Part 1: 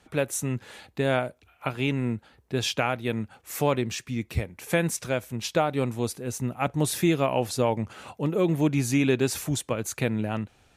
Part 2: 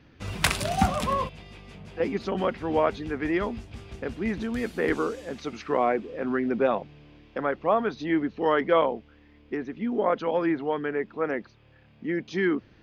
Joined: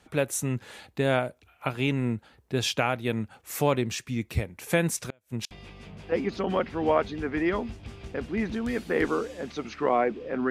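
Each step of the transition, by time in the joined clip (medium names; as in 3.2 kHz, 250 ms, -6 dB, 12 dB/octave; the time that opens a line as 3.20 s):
part 1
5.09–5.51 s: inverted gate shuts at -19 dBFS, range -36 dB
5.51 s: go over to part 2 from 1.39 s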